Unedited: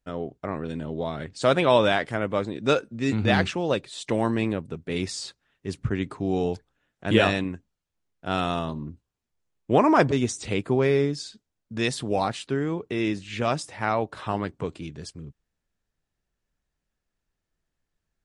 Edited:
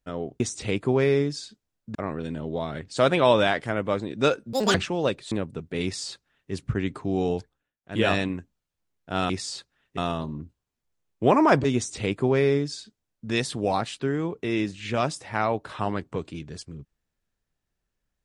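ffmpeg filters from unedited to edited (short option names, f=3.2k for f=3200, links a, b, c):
-filter_complex "[0:a]asplit=10[a][b][c][d][e][f][g][h][i][j];[a]atrim=end=0.402[k];[b]atrim=start=10.228:end=11.782[l];[c]atrim=start=0.398:end=2.984[m];[d]atrim=start=2.98:end=3.4,asetpts=PTS-STARTPTS,asetrate=86436,aresample=44100[n];[e]atrim=start=3.396:end=3.972[o];[f]atrim=start=4.468:end=6.88,asetpts=PTS-STARTPTS,afade=t=out:st=2.072:d=0.34:silence=0.11885[p];[g]atrim=start=6.88:end=6.98,asetpts=PTS-STARTPTS,volume=-18.5dB[q];[h]atrim=start=6.98:end=8.452,asetpts=PTS-STARTPTS,afade=t=in:d=0.34:silence=0.11885[r];[i]atrim=start=4.988:end=5.672[s];[j]atrim=start=8.448[t];[k][l]acrossfade=d=0.004:c1=hsin:c2=hsin[u];[u][m]acrossfade=d=0.004:c1=hsin:c2=hsin[v];[v][n]acrossfade=d=0.004:c1=hsin:c2=hsin[w];[w][o]acrossfade=d=0.004:c1=hsin:c2=hsin[x];[p][q][r]concat=n=3:v=0:a=1[y];[x][y]acrossfade=d=0.004:c1=hsin:c2=hsin[z];[z][s]acrossfade=d=0.004:c1=hsin:c2=hsin[aa];[aa][t]acrossfade=d=0.004:c1=hsin:c2=hsin"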